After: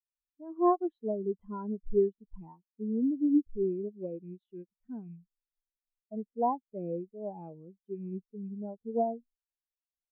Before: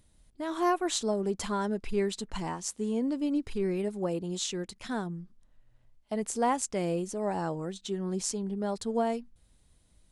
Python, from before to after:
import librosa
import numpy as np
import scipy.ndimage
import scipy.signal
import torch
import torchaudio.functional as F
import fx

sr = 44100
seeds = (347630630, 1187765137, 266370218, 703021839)

y = fx.rattle_buzz(x, sr, strikes_db=-37.0, level_db=-30.0)
y = scipy.signal.sosfilt(scipy.signal.butter(2, 2100.0, 'lowpass', fs=sr, output='sos'), y)
y = fx.spectral_expand(y, sr, expansion=2.5)
y = y * 10.0 ** (1.5 / 20.0)